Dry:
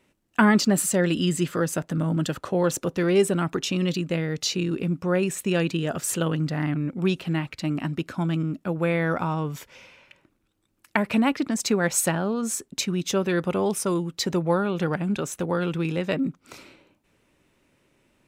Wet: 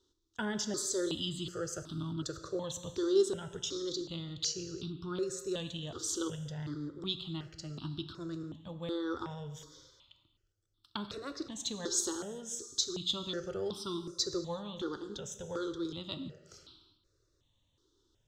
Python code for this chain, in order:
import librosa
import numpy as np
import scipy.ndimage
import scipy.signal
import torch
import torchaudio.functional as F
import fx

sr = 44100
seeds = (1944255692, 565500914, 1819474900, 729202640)

y = fx.curve_eq(x, sr, hz=(110.0, 190.0, 380.0, 700.0, 1300.0, 2400.0, 3400.0, 6600.0, 10000.0), db=(0, -14, -2, -17, -7, -24, 8, 2, -20))
y = fx.rev_gated(y, sr, seeds[0], gate_ms=410, shape='falling', drr_db=8.5)
y = fx.phaser_held(y, sr, hz=2.7, low_hz=630.0, high_hz=1900.0)
y = y * 10.0 ** (-2.5 / 20.0)